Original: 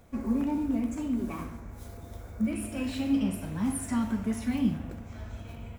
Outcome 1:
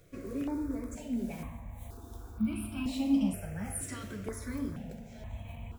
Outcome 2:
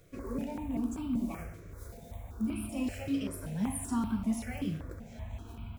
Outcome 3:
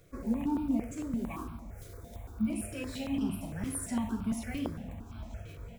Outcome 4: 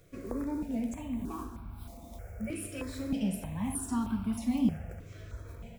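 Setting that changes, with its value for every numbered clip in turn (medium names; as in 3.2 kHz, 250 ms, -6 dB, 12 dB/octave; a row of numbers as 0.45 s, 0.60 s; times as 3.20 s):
stepped phaser, rate: 2.1 Hz, 5.2 Hz, 8.8 Hz, 3.2 Hz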